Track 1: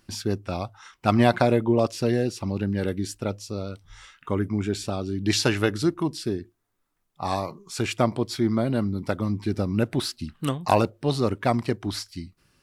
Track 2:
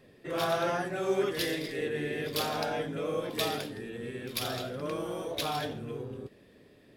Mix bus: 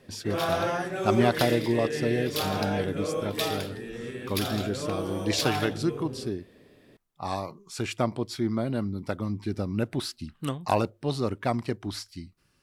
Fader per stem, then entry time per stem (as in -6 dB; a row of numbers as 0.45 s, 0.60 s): -4.5 dB, +2.0 dB; 0.00 s, 0.00 s